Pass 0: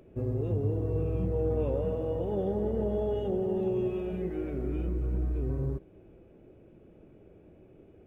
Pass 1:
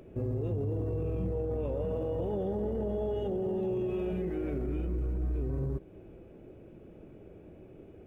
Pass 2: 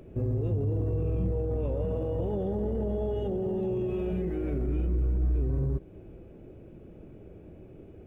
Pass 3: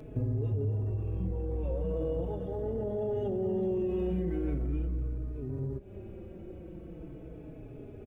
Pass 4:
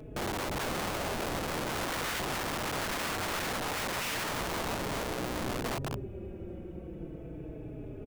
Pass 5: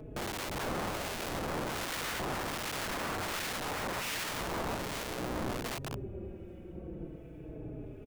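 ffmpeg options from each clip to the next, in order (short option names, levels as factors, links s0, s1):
-filter_complex "[0:a]asplit=2[s0][s1];[s1]acompressor=threshold=0.0141:ratio=6,volume=0.891[s2];[s0][s2]amix=inputs=2:normalize=0,alimiter=level_in=1.06:limit=0.0631:level=0:latency=1:release=12,volume=0.944,volume=0.841"
-af "lowshelf=f=190:g=6.5"
-filter_complex "[0:a]acompressor=threshold=0.0224:ratio=6,asplit=2[s0][s1];[s1]adelay=4.2,afreqshift=-0.4[s2];[s0][s2]amix=inputs=2:normalize=1,volume=2"
-filter_complex "[0:a]asplit=2[s0][s1];[s1]aecho=0:1:180.8|230.3|277:0.708|0.398|0.562[s2];[s0][s2]amix=inputs=2:normalize=0,aeval=exprs='(mod(28.2*val(0)+1,2)-1)/28.2':c=same"
-filter_complex "[0:a]acrossover=split=1700[s0][s1];[s0]aeval=exprs='val(0)*(1-0.5/2+0.5/2*cos(2*PI*1.3*n/s))':c=same[s2];[s1]aeval=exprs='val(0)*(1-0.5/2-0.5/2*cos(2*PI*1.3*n/s))':c=same[s3];[s2][s3]amix=inputs=2:normalize=0"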